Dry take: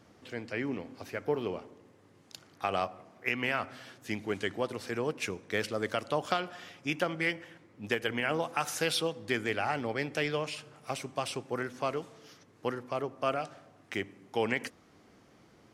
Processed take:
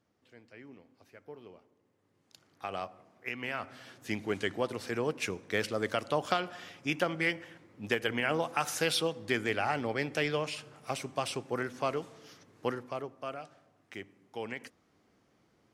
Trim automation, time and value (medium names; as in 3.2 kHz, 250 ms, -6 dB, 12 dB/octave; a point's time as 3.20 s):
1.68 s -17 dB
2.68 s -6.5 dB
3.40 s -6.5 dB
4.08 s +0.5 dB
12.71 s +0.5 dB
13.27 s -9 dB